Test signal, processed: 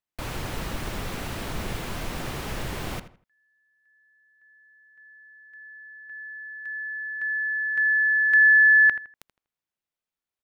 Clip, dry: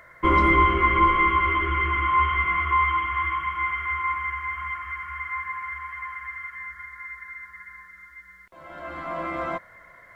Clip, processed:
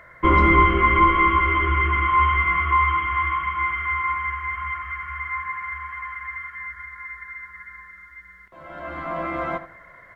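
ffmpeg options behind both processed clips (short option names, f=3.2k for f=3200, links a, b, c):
-filter_complex "[0:a]bass=f=250:g=2,treble=f=4k:g=-7,asplit=2[a][b];[b]adelay=81,lowpass=f=3k:p=1,volume=-12.5dB,asplit=2[c][d];[d]adelay=81,lowpass=f=3k:p=1,volume=0.3,asplit=2[e][f];[f]adelay=81,lowpass=f=3k:p=1,volume=0.3[g];[a][c][e][g]amix=inputs=4:normalize=0,volume=2.5dB"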